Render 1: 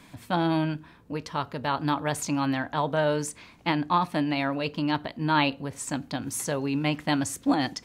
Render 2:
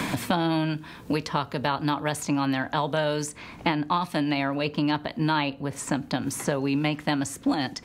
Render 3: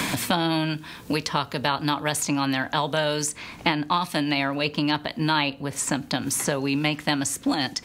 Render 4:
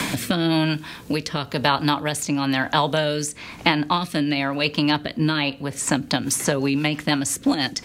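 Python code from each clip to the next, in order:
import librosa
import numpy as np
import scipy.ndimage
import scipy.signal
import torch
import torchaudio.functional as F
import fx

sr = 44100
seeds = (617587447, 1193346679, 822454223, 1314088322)

y1 = fx.band_squash(x, sr, depth_pct=100)
y2 = fx.high_shelf(y1, sr, hz=2100.0, db=8.5)
y3 = fx.rotary_switch(y2, sr, hz=1.0, then_hz=6.0, switch_at_s=5.33)
y3 = y3 * librosa.db_to_amplitude(5.0)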